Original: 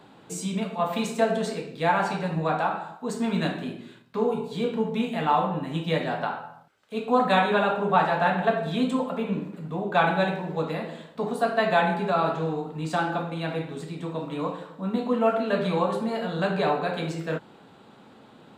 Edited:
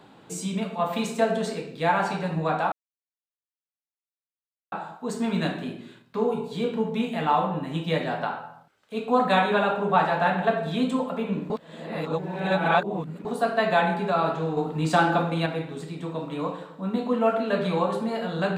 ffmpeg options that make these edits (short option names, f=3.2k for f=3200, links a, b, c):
-filter_complex "[0:a]asplit=6[a][b][c][d][e][f];[a]atrim=end=2.72,asetpts=PTS-STARTPTS,afade=t=out:st=2.716:d=0.004:c=hsin,apad=pad_dur=2[g];[b]atrim=start=2.72:end=9.502,asetpts=PTS-STARTPTS,afade=t=in:d=0.004:c=hsin[h];[c]atrim=start=9.498:end=11.252,asetpts=PTS-STARTPTS,areverse[i];[d]atrim=start=11.248:end=12.572[j];[e]atrim=start=12.568:end=13.462,asetpts=PTS-STARTPTS,volume=5.5dB[k];[f]atrim=start=13.458[l];[g][h]concat=n=2:v=0:a=1[m];[m][i]acrossfade=d=0.004:c1=hsin:c2=hsin[n];[n][j]acrossfade=d=0.004:c1=hsin:c2=hsin[o];[o][k]acrossfade=d=0.004:c1=hsin:c2=hsin[p];[p][l]acrossfade=d=0.004:c1=hsin:c2=hsin"